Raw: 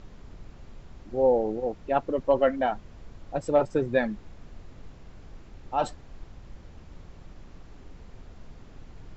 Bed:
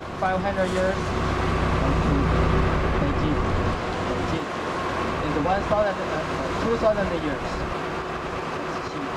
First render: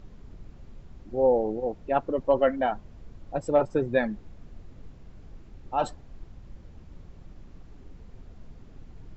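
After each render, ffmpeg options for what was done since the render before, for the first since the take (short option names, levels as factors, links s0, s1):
-af "afftdn=nr=6:nf=-49"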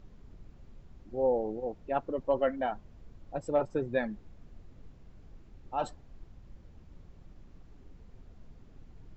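-af "volume=0.501"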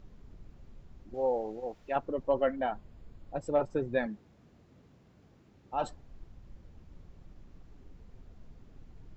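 -filter_complex "[0:a]asettb=1/sr,asplit=3[s0][s1][s2];[s0]atrim=end=1.144[s3];[s1]atrim=start=1.14:end=1.96,asetpts=PTS-STARTPTS,afade=t=in:d=0.004:c=qsin,afade=t=out:st=0.816:d=0.004:c=qsin,tiltshelf=f=730:g=-7[s4];[s2]atrim=start=1.956[s5];[s3][s4]acrossfade=d=0.004:c1=hsin:c2=qsin[s6];[s6][s5]acrossfade=d=0.004:c1=qsin:c2=hsin,asettb=1/sr,asplit=3[s7][s8][s9];[s7]atrim=end=2.524[s10];[s8]atrim=start=2.52:end=3.36,asetpts=PTS-STARTPTS,afade=t=in:d=0.004:c=qsin,afade=t=out:st=0.836:d=0.004:c=qsin,bandreject=f=5800:w=6.2[s11];[s9]atrim=start=3.356[s12];[s10][s11]acrossfade=d=0.004:c1=hsin:c2=qsin[s13];[s13][s12]acrossfade=d=0.004:c1=qsin:c2=hsin,asettb=1/sr,asplit=3[s14][s15][s16];[s14]atrim=end=4.064[s17];[s15]atrim=start=4.06:end=5.74,asetpts=PTS-STARTPTS,afade=t=in:d=0.004:c=qsin,afade=t=out:st=1.676:d=0.004:c=qsin,highpass=120[s18];[s16]atrim=start=5.736[s19];[s17][s18]acrossfade=d=0.004:c1=hsin:c2=qsin[s20];[s20][s19]acrossfade=d=0.004:c1=qsin:c2=hsin"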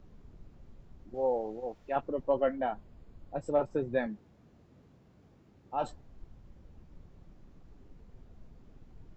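-filter_complex "[0:a]acrossover=split=110|1500[s0][s1][s2];[s0]aeval=exprs='clip(val(0),-1,0.00224)':c=same[s3];[s2]flanger=delay=18.5:depth=3.7:speed=0.75[s4];[s3][s1][s4]amix=inputs=3:normalize=0"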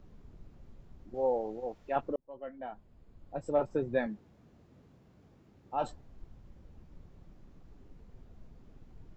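-filter_complex "[0:a]asplit=2[s0][s1];[s0]atrim=end=2.16,asetpts=PTS-STARTPTS,afade=t=out:st=2.156:d=0.004:c=hsin[s2];[s1]atrim=start=2.16,asetpts=PTS-STARTPTS,afade=t=in:d=1.52[s3];[s2][s3]concat=n=2:v=0:a=1"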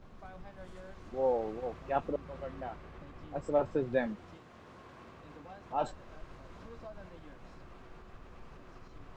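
-filter_complex "[1:a]volume=0.0422[s0];[0:a][s0]amix=inputs=2:normalize=0"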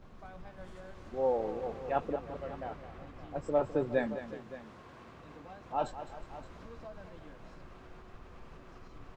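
-af "aecho=1:1:208|363|570:0.251|0.126|0.158"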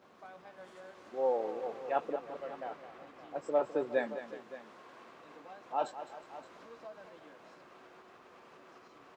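-af "highpass=340"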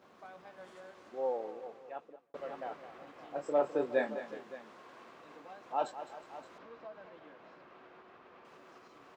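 -filter_complex "[0:a]asettb=1/sr,asplit=3[s0][s1][s2];[s0]atrim=end=3.054[s3];[s1]atrim=start=3.05:end=4.53,asetpts=PTS-STARTPTS,afade=t=in:d=0.004:c=qsin,afade=t=out:st=1.476:d=0.004:c=qsin,asplit=2[s4][s5];[s5]adelay=28,volume=0.447[s6];[s4][s6]amix=inputs=2:normalize=0,atrim=end_sample=65268[s7];[s2]atrim=start=4.526[s8];[s3][s7]acrossfade=d=0.004:c1=hsin:c2=qsin[s9];[s9][s8]acrossfade=d=0.004:c1=qsin:c2=hsin,asettb=1/sr,asplit=3[s10][s11][s12];[s10]atrim=end=6.584[s13];[s11]atrim=start=6.58:end=8.45,asetpts=PTS-STARTPTS,afade=t=in:d=0.004:c=qsin,afade=t=out:st=1.866:d=0.004:c=qsin,lowpass=3500[s14];[s12]atrim=start=8.446[s15];[s13][s14]acrossfade=d=0.004:c1=hsin:c2=qsin[s16];[s16][s15]acrossfade=d=0.004:c1=qsin:c2=hsin,asplit=2[s17][s18];[s17]atrim=end=2.34,asetpts=PTS-STARTPTS,afade=t=out:st=0.73:d=1.61[s19];[s18]atrim=start=2.34,asetpts=PTS-STARTPTS,afade=t=in:d=0.004:c=hsin[s20];[s19][s20]concat=n=2:v=0:a=1"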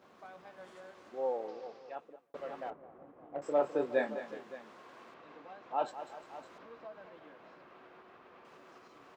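-filter_complex "[0:a]asettb=1/sr,asplit=3[s0][s1][s2];[s0]atrim=end=1.484[s3];[s1]atrim=start=1.48:end=1.95,asetpts=PTS-STARTPTS,afade=t=in:d=0.004:c=qsin,afade=t=out:st=0.466:d=0.004:c=qsin,lowpass=f=5100:t=q:w=4.3[s4];[s2]atrim=start=1.946[s5];[s3][s4]acrossfade=d=0.004:c1=hsin:c2=qsin[s6];[s6][s5]acrossfade=d=0.004:c1=qsin:c2=hsin,asettb=1/sr,asplit=3[s7][s8][s9];[s7]atrim=end=2.704[s10];[s8]atrim=start=2.7:end=3.42,asetpts=PTS-STARTPTS,afade=t=in:d=0.004:c=qsin,afade=t=out:st=0.716:d=0.004:c=qsin,adynamicsmooth=sensitivity=1.5:basefreq=800[s11];[s9]atrim=start=3.416[s12];[s10][s11]acrossfade=d=0.004:c1=hsin:c2=qsin[s13];[s13][s12]acrossfade=d=0.004:c1=qsin:c2=hsin,asettb=1/sr,asplit=3[s14][s15][s16];[s14]atrim=end=5.144[s17];[s15]atrim=start=5.14:end=5.88,asetpts=PTS-STARTPTS,afade=t=in:d=0.004:c=qsin,afade=t=out:st=0.736:d=0.004:c=qsin,lowpass=4300[s18];[s16]atrim=start=5.876[s19];[s17][s18]acrossfade=d=0.004:c1=hsin:c2=qsin[s20];[s20][s19]acrossfade=d=0.004:c1=qsin:c2=hsin"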